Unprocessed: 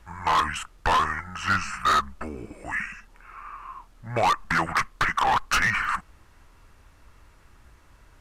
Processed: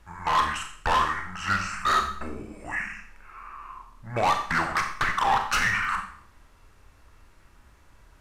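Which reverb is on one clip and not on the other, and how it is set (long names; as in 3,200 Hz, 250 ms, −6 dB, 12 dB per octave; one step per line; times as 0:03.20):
four-comb reverb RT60 0.56 s, combs from 29 ms, DRR 4 dB
level −2.5 dB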